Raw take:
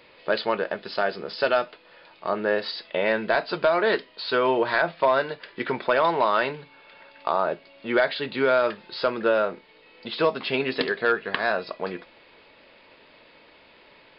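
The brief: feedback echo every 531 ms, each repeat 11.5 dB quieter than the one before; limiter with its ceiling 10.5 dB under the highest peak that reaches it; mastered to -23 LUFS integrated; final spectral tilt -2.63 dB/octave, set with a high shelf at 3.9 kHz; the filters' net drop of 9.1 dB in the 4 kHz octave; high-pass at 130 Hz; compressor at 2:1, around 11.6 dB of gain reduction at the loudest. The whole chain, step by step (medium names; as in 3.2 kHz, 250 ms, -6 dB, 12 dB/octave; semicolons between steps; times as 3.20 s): high-pass 130 Hz; treble shelf 3.9 kHz -8.5 dB; peaking EQ 4 kHz -6.5 dB; compression 2:1, threshold -39 dBFS; peak limiter -28.5 dBFS; feedback delay 531 ms, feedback 27%, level -11.5 dB; trim +17 dB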